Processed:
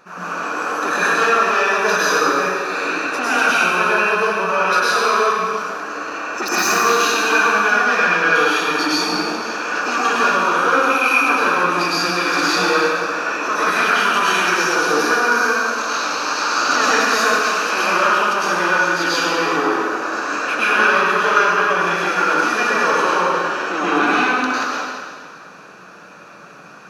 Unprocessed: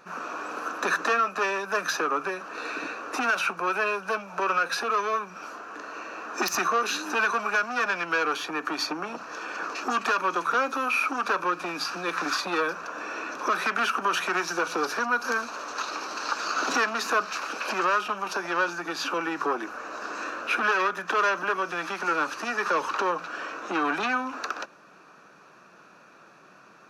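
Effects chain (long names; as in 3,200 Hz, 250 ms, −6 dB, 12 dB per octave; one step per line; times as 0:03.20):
in parallel at +3 dB: brickwall limiter −19.5 dBFS, peak gain reduction 7.5 dB
on the sum: dense smooth reverb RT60 1.8 s, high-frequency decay 1×, pre-delay 90 ms, DRR −9 dB
level −5 dB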